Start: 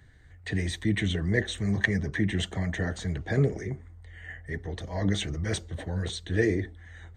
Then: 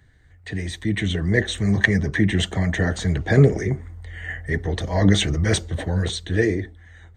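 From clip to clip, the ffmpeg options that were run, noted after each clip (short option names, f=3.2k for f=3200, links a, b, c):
-af "dynaudnorm=f=200:g=11:m=11.5dB"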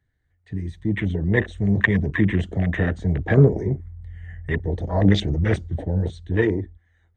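-af "afwtdn=0.0501,highshelf=f=4.3k:g=-6"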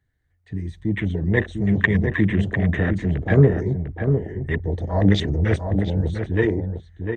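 -filter_complex "[0:a]asplit=2[a][b];[b]adelay=699.7,volume=-6dB,highshelf=f=4k:g=-15.7[c];[a][c]amix=inputs=2:normalize=0"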